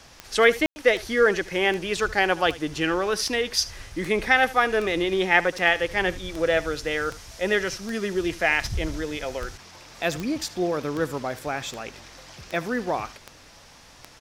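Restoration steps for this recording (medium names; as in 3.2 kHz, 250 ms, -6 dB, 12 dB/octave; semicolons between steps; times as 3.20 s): de-click; room tone fill 0.66–0.76 s; inverse comb 75 ms -18.5 dB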